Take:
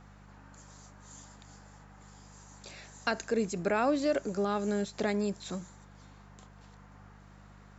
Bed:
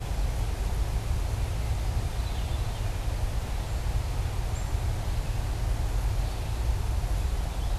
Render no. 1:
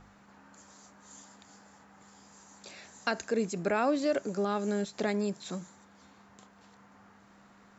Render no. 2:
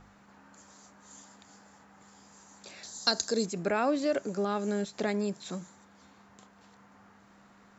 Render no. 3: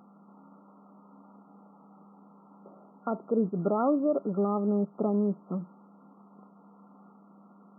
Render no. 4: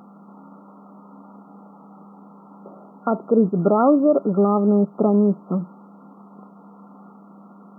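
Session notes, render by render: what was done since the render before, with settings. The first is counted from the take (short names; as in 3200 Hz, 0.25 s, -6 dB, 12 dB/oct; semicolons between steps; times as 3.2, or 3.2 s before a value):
de-hum 50 Hz, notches 3
2.83–3.46 resonant high shelf 3300 Hz +9 dB, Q 3
FFT band-pass 160–1400 Hz; low shelf 240 Hz +9.5 dB
gain +10 dB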